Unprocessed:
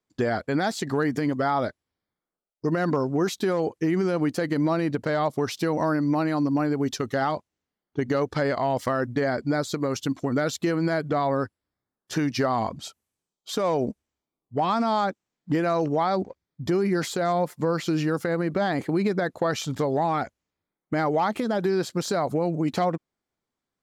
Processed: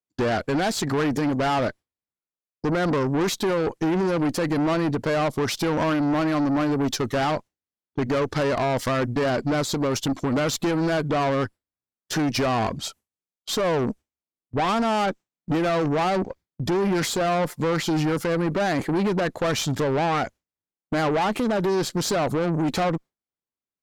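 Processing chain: gate with hold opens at -39 dBFS; valve stage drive 28 dB, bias 0.4; trim +8.5 dB

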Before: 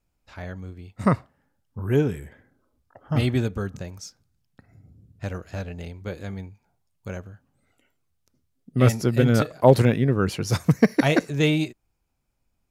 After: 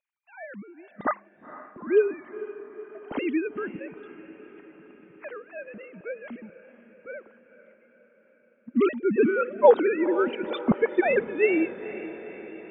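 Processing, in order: formants replaced by sine waves; echo that smears into a reverb 482 ms, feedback 61%, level -14.5 dB; trim -3 dB

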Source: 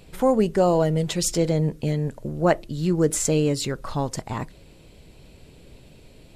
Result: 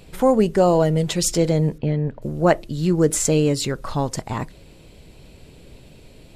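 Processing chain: 1.78–2.22 s: distance through air 320 m; trim +3 dB

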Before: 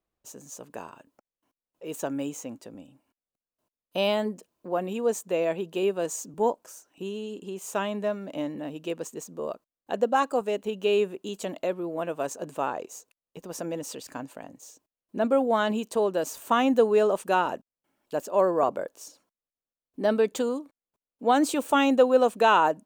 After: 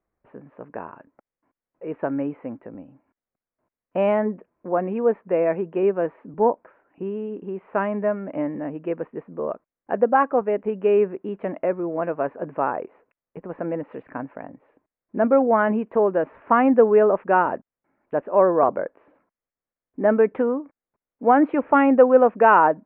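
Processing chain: steep low-pass 2.2 kHz 48 dB/octave; trim +5.5 dB

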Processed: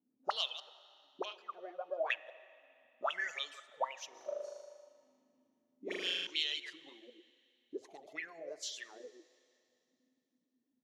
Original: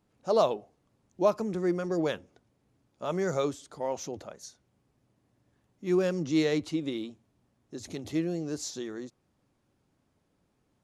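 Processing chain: chunks repeated in reverse 100 ms, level -5.5 dB; RIAA curve recording; reverb removal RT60 1.2 s; 1.25–2.10 s: three-band isolator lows -18 dB, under 490 Hz, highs -21 dB, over 3.5 kHz; auto-wah 250–3100 Hz, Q 16, up, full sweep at -27.5 dBFS; 4.09–6.27 s: flutter echo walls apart 6.7 m, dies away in 1.4 s; reverberation RT60 2.8 s, pre-delay 14 ms, DRR 17 dB; trim +12.5 dB

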